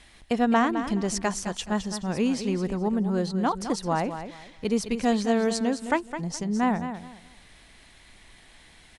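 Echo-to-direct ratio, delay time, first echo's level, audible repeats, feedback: −9.5 dB, 211 ms, −10.0 dB, 3, 24%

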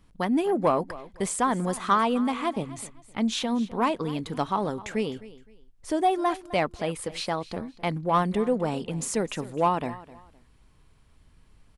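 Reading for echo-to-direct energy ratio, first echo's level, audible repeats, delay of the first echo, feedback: −17.5 dB, −18.0 dB, 2, 258 ms, 26%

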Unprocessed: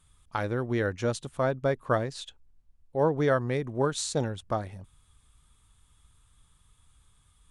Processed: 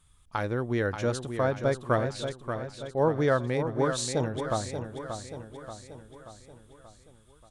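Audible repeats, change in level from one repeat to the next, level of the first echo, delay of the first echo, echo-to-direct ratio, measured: 5, −5.5 dB, −8.0 dB, 582 ms, −6.5 dB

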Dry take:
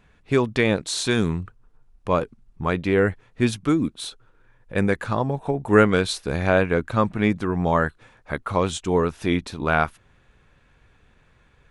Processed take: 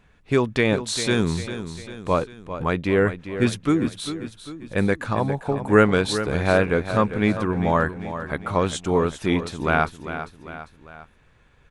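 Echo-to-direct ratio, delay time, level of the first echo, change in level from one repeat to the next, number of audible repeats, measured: −10.0 dB, 398 ms, −11.0 dB, −6.0 dB, 3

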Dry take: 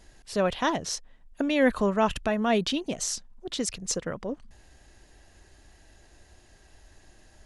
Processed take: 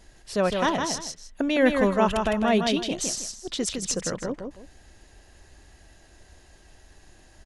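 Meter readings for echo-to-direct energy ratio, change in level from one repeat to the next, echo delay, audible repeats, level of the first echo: −4.5 dB, −11.5 dB, 159 ms, 2, −5.0 dB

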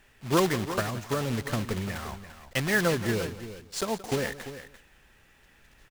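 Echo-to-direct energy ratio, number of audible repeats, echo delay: −11.0 dB, 3, 175 ms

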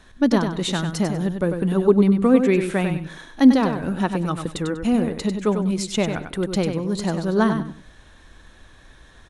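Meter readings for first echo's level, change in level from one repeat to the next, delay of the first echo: −7.0 dB, −12.5 dB, 97 ms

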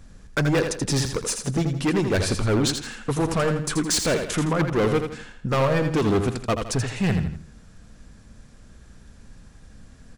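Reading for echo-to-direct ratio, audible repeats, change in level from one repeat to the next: −6.5 dB, 3, −8.5 dB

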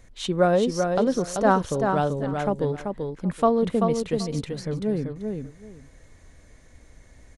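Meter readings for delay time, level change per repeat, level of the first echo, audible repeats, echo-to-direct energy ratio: 386 ms, −14.5 dB, −5.0 dB, 2, −5.0 dB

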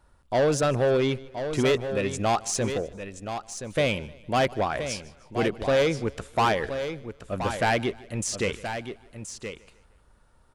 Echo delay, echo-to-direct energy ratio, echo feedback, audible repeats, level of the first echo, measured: 153 ms, −8.5 dB, repeats not evenly spaced, 5, −21.5 dB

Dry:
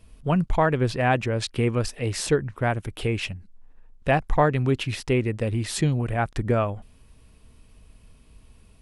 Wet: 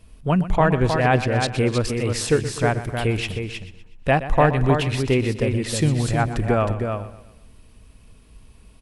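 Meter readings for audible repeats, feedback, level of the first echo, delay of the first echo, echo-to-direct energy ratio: 7, repeats not evenly spaced, −14.0 dB, 123 ms, −5.0 dB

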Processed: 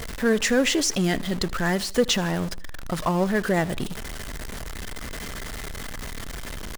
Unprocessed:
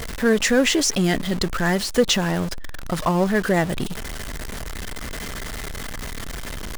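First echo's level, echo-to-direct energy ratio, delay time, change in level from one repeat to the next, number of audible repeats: −22.5 dB, −21.5 dB, 78 ms, −5.5 dB, 2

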